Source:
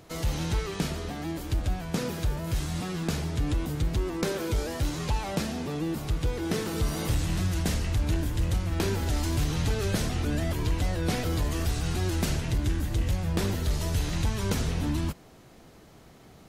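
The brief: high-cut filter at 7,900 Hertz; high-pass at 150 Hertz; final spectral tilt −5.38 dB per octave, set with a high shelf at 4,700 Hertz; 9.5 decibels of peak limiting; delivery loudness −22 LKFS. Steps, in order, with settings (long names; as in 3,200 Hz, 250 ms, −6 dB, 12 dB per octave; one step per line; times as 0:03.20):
high-pass filter 150 Hz
low-pass filter 7,900 Hz
high-shelf EQ 4,700 Hz −8.5 dB
level +13 dB
brickwall limiter −12 dBFS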